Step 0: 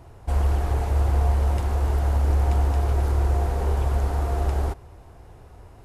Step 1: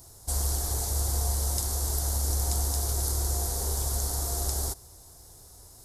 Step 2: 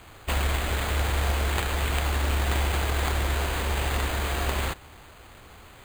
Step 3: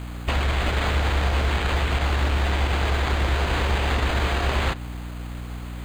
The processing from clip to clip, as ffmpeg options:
-af "aexciter=amount=14.6:drive=6.5:freq=4.1k,volume=-8.5dB"
-af "acrusher=samples=8:mix=1:aa=0.000001,volume=2.5dB"
-filter_complex "[0:a]acrossover=split=6000[a][b];[b]acompressor=threshold=-55dB:ratio=4:attack=1:release=60[c];[a][c]amix=inputs=2:normalize=0,alimiter=limit=-20.5dB:level=0:latency=1:release=28,aeval=exprs='val(0)+0.0126*(sin(2*PI*60*n/s)+sin(2*PI*2*60*n/s)/2+sin(2*PI*3*60*n/s)/3+sin(2*PI*4*60*n/s)/4+sin(2*PI*5*60*n/s)/5)':c=same,volume=6dB"

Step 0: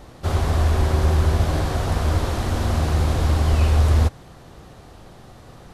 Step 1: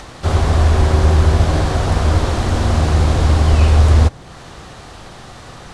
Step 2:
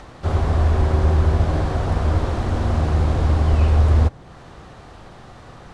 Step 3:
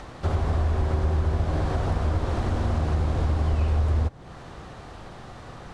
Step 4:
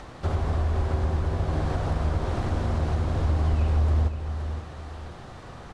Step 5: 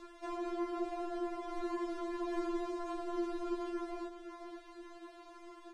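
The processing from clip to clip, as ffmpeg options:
-filter_complex "[0:a]lowpass=f=9.6k:w=0.5412,lowpass=f=9.6k:w=1.3066,acrossover=split=900[a][b];[b]acompressor=mode=upward:threshold=-38dB:ratio=2.5[c];[a][c]amix=inputs=2:normalize=0,volume=6dB"
-af "highshelf=f=2.8k:g=-10.5,volume=-4.5dB"
-af "acompressor=threshold=-22dB:ratio=3"
-af "aecho=1:1:520|1040|1560|2080:0.355|0.114|0.0363|0.0116,volume=-1.5dB"
-af "aeval=exprs='val(0)*sin(2*PI*320*n/s)':c=same,afftfilt=real='re*4*eq(mod(b,16),0)':imag='im*4*eq(mod(b,16),0)':win_size=2048:overlap=0.75,volume=-5dB"

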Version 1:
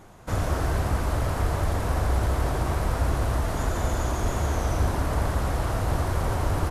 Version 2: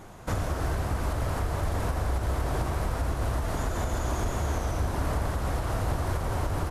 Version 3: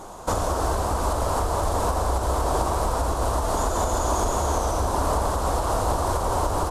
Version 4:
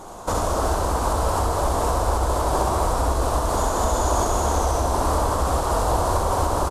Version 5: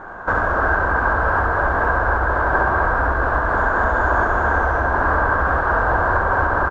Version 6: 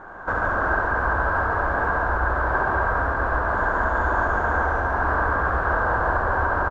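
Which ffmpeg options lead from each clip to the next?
-af "alimiter=limit=-22dB:level=0:latency=1:release=391,volume=3dB"
-af "equalizer=f=125:t=o:w=1:g=-8,equalizer=f=500:t=o:w=1:g=4,equalizer=f=1k:t=o:w=1:g=9,equalizer=f=2k:t=o:w=1:g=-9,equalizer=f=4k:t=o:w=1:g=3,equalizer=f=8k:t=o:w=1:g=8,volume=4dB"
-af "aecho=1:1:67.06|250.7:0.708|0.355"
-af "lowpass=f=1.6k:t=q:w=16"
-af "aecho=1:1:142:0.631,volume=-5.5dB"

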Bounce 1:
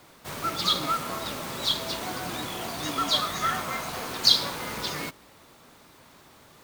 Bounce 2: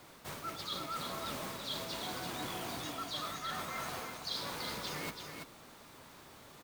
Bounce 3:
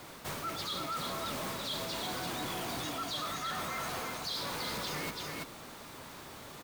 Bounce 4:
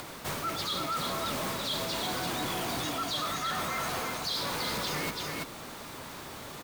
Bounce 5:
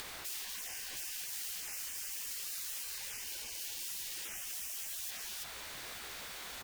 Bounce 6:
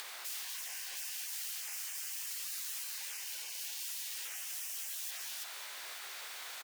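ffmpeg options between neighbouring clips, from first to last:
-af "areverse,acompressor=threshold=-35dB:ratio=10,areverse,aecho=1:1:332:0.501,volume=-2.5dB"
-filter_complex "[0:a]asplit=2[a][b];[b]alimiter=level_in=10.5dB:limit=-24dB:level=0:latency=1:release=82,volume=-10.5dB,volume=2.5dB[c];[a][c]amix=inputs=2:normalize=0,asoftclip=type=tanh:threshold=-30.5dB"
-af "acompressor=mode=upward:threshold=-44dB:ratio=2.5,volume=4.5dB"
-af "afftfilt=real='re*lt(hypot(re,im),0.0141)':imag='im*lt(hypot(re,im),0.0141)':win_size=1024:overlap=0.75,volume=1dB"
-filter_complex "[0:a]highpass=660,asplit=2[a][b];[b]aecho=0:1:204:0.316[c];[a][c]amix=inputs=2:normalize=0"

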